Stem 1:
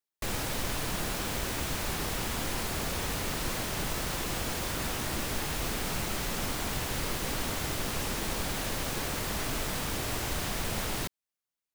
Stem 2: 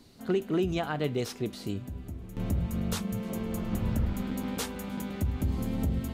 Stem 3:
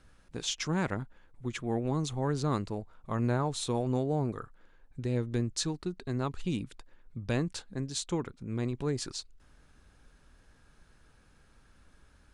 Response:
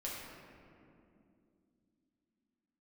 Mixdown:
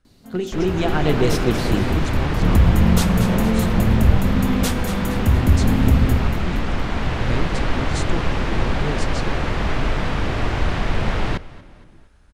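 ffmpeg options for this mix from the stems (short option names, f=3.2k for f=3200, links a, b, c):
-filter_complex "[0:a]lowpass=2.6k,adelay=300,volume=-1dB,asplit=3[a][b][c];[b]volume=-21.5dB[d];[c]volume=-20dB[e];[1:a]aeval=exprs='0.106*(cos(1*acos(clip(val(0)/0.106,-1,1)))-cos(1*PI/2))+0.00168*(cos(6*acos(clip(val(0)/0.106,-1,1)))-cos(6*PI/2))':c=same,adelay=50,volume=-0.5dB,asplit=3[f][g][h];[g]volume=-8dB[i];[h]volume=-8dB[j];[2:a]volume=-9dB[k];[3:a]atrim=start_sample=2205[l];[d][i]amix=inputs=2:normalize=0[m];[m][l]afir=irnorm=-1:irlink=0[n];[e][j]amix=inputs=2:normalize=0,aecho=0:1:233|466|699|932|1165|1398:1|0.44|0.194|0.0852|0.0375|0.0165[o];[a][f][k][n][o]amix=inputs=5:normalize=0,lowshelf=f=100:g=7.5,dynaudnorm=f=340:g=5:m=11dB"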